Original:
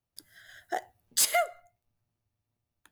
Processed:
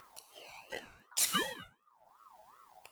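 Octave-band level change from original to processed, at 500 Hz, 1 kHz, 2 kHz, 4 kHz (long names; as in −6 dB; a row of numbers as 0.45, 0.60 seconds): −12.5, −9.5, −4.5, −2.5 decibels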